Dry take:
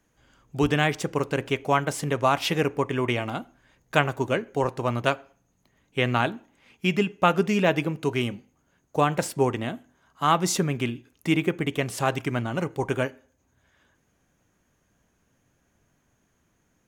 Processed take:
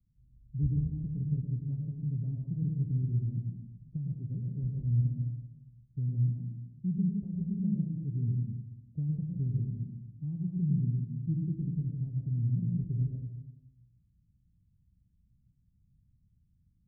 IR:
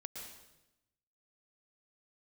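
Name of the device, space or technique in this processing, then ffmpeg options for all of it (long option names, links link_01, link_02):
club heard from the street: -filter_complex "[0:a]alimiter=limit=-10.5dB:level=0:latency=1:release=439,lowpass=frequency=150:width=0.5412,lowpass=frequency=150:width=1.3066[link_01];[1:a]atrim=start_sample=2205[link_02];[link_01][link_02]afir=irnorm=-1:irlink=0,volume=8dB"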